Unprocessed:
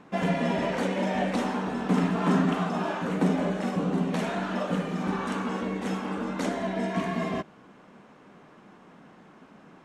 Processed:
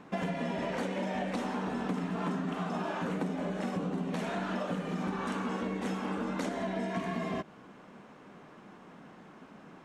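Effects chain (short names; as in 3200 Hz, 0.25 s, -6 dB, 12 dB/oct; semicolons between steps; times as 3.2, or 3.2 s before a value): compressor 10:1, threshold -30 dBFS, peak gain reduction 12 dB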